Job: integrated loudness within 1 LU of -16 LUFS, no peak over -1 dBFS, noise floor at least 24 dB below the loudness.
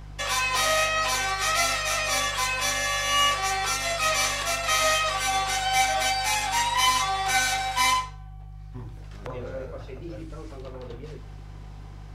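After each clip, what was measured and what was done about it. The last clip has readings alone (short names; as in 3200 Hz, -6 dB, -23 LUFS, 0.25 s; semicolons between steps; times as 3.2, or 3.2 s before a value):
hum 50 Hz; harmonics up to 150 Hz; hum level -38 dBFS; loudness -23.0 LUFS; peak -9.0 dBFS; loudness target -16.0 LUFS
-> de-hum 50 Hz, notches 3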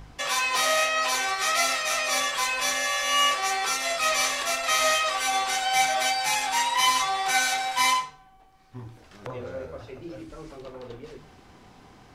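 hum none; loudness -23.0 LUFS; peak -9.0 dBFS; loudness target -16.0 LUFS
-> gain +7 dB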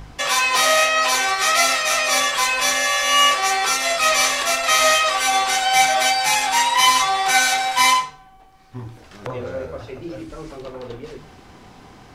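loudness -16.0 LUFS; peak -2.0 dBFS; noise floor -46 dBFS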